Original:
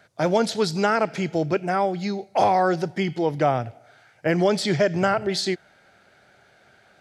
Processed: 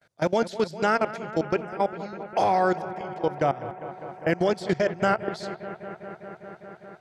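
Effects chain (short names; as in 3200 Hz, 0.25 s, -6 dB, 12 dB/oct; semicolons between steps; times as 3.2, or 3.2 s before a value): gate with hold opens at -49 dBFS; level quantiser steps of 21 dB; on a send: analogue delay 0.201 s, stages 4096, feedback 85%, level -15 dB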